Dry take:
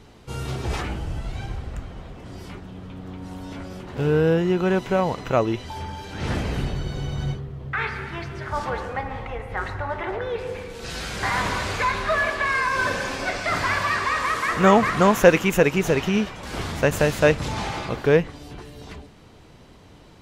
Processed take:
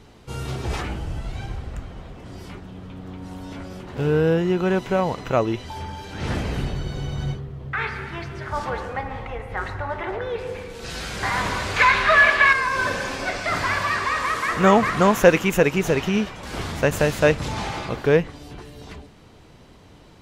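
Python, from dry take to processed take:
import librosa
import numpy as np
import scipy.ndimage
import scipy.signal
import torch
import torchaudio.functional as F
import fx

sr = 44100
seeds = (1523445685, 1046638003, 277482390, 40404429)

y = fx.peak_eq(x, sr, hz=2200.0, db=10.5, octaves=2.3, at=(11.76, 12.53))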